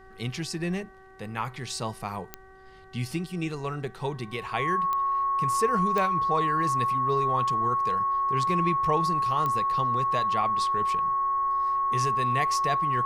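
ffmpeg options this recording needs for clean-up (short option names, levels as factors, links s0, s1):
-af "adeclick=t=4,bandreject=f=380.9:t=h:w=4,bandreject=f=761.8:t=h:w=4,bandreject=f=1142.7:t=h:w=4,bandreject=f=1523.6:t=h:w=4,bandreject=f=1904.5:t=h:w=4,bandreject=f=1100:w=30,agate=range=0.0891:threshold=0.0126"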